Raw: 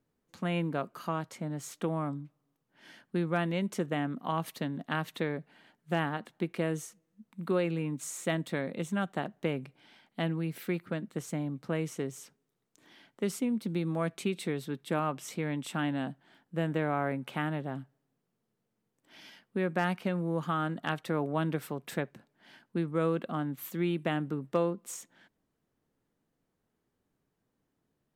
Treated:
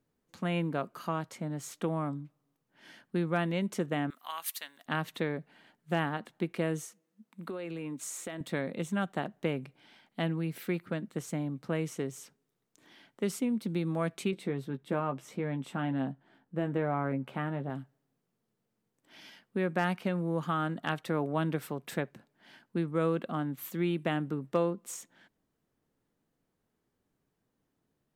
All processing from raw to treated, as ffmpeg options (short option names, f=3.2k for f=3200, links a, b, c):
-filter_complex "[0:a]asettb=1/sr,asplit=3[a][b][c];[a]atrim=end=4.104[d];[b]atrim=start=4.1:end=4.86,asetpts=PTS-STARTPTS,afade=t=in:d=0.004:c=qsin,afade=t=out:st=0.756:d=0.004:c=qsin,highpass=1.4k,aemphasis=mode=production:type=50kf[e];[c]atrim=start=4.856[f];[d][e]acrossfade=d=0.004:c1=hsin:c2=qsin[g];[g][f]acrossfade=d=0.004:c1=qsin:c2=hsin,asettb=1/sr,asplit=3[h][i][j];[h]atrim=end=6.854[k];[i]atrim=start=6.85:end=8.41,asetpts=PTS-STARTPTS,afade=t=in:d=0.004:c=qsin,afade=t=out:st=1.556:d=0.004:c=qsin,highpass=220,acompressor=threshold=-34dB:ratio=10:attack=3.2:release=140:knee=1:detection=peak[l];[j]atrim=start=8.406[m];[k][l]acrossfade=d=0.004:c1=hsin:c2=qsin[n];[n][m]acrossfade=d=0.004:c1=qsin:c2=hsin,asettb=1/sr,asplit=3[o][p][q];[o]atrim=end=14.314[r];[p]atrim=start=14.31:end=17.7,asetpts=PTS-STARTPTS,afade=t=in:d=0.004:c=qsin,afade=t=out:st=3.386:d=0.004:c=qsin,highshelf=f=2.2k:g=-11.5,asplit=2[s][t];[t]adelay=15,volume=-8dB[u];[s][u]amix=inputs=2:normalize=0,atrim=end_sample=149499[v];[q]atrim=start=17.696[w];[r][v]acrossfade=d=0.004:c1=hsin:c2=qsin[x];[x][w]acrossfade=d=0.004:c1=qsin:c2=hsin"